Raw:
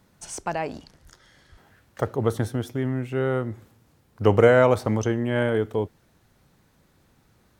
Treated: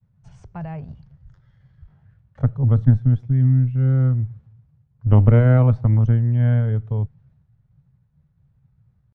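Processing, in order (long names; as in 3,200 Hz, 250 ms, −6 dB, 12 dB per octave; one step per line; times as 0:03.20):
downward expander −55 dBFS
tempo change 0.83×
low shelf with overshoot 200 Hz +13.5 dB, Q 3
harmonic generator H 2 −7 dB, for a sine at 2.5 dBFS
head-to-tape spacing loss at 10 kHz 32 dB
level −7 dB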